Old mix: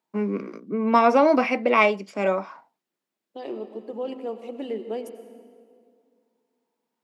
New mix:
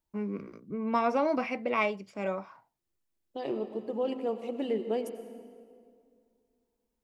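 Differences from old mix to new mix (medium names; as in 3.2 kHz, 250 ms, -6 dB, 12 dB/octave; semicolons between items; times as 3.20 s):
first voice -10.0 dB; master: remove high-pass 200 Hz 24 dB/octave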